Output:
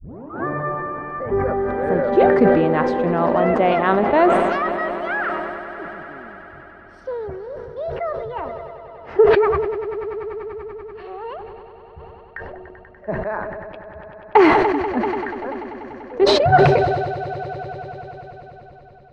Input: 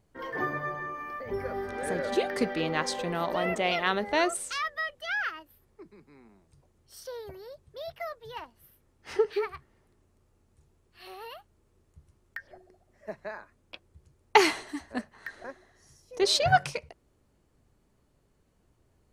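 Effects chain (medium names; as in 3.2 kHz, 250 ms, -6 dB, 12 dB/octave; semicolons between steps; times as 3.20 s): tape start-up on the opening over 0.46 s; low-pass 1.2 kHz 12 dB/octave; level rider gain up to 12 dB; on a send: echo with a slow build-up 97 ms, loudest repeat 5, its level -17.5 dB; on the sum: decay stretcher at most 28 dB/s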